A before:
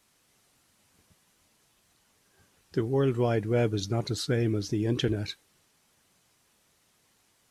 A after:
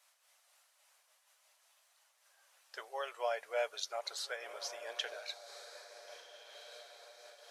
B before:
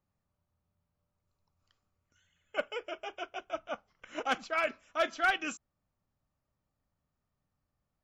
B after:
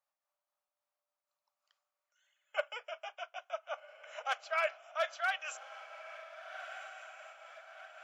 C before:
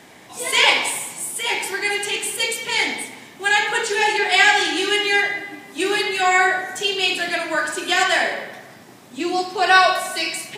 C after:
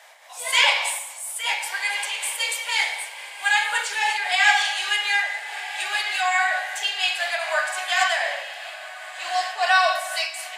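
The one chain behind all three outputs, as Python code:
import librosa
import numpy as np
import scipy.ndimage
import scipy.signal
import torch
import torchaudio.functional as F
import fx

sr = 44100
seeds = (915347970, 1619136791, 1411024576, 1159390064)

y = scipy.signal.sosfilt(scipy.signal.ellip(4, 1.0, 50, 580.0, 'highpass', fs=sr, output='sos'), x)
y = fx.echo_diffused(y, sr, ms=1470, feedback_pct=53, wet_db=-12.5)
y = fx.am_noise(y, sr, seeds[0], hz=5.7, depth_pct=55)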